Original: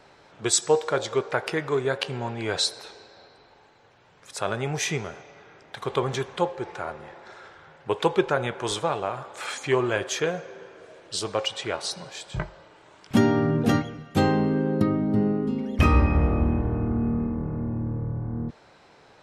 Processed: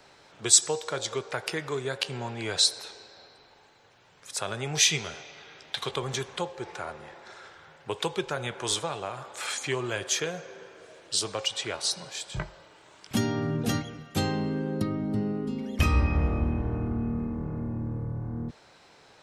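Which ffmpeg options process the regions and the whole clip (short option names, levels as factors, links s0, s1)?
-filter_complex "[0:a]asettb=1/sr,asplit=3[s0][s1][s2];[s0]atrim=end=4.754[s3];[s1]atrim=start=4.75:end=5.91,asetpts=PTS-STARTPTS,afade=t=in:d=0.004:c=qsin,afade=t=out:st=1.156:d=0.004:c=qsin,equalizer=f=3600:w=0.97:g=9.5,asplit=2[s4][s5];[s5]adelay=13,volume=0.266[s6];[s4][s6]amix=inputs=2:normalize=0,atrim=end_sample=51156[s7];[s2]atrim=start=5.906[s8];[s3][s7]acrossfade=d=0.004:c1=hsin:c2=qsin[s9];[s9][s8]acrossfade=d=0.004:c1=qsin:c2=hsin,highshelf=f=2900:g=9,acrossover=split=160|3000[s10][s11][s12];[s11]acompressor=threshold=0.0398:ratio=2[s13];[s10][s13][s12]amix=inputs=3:normalize=0,volume=0.668"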